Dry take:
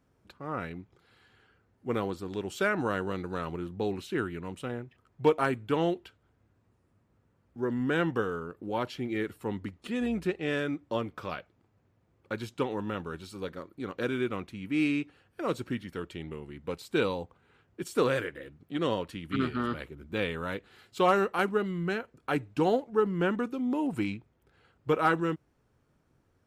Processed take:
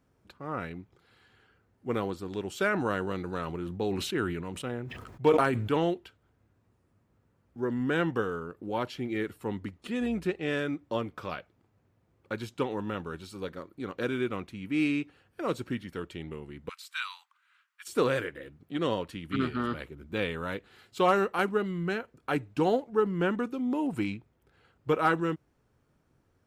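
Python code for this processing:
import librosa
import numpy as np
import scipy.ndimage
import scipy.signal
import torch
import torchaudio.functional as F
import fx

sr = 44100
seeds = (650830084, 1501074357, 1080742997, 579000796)

y = fx.sustainer(x, sr, db_per_s=39.0, at=(2.62, 5.84))
y = fx.steep_highpass(y, sr, hz=1100.0, slope=48, at=(16.69, 17.88))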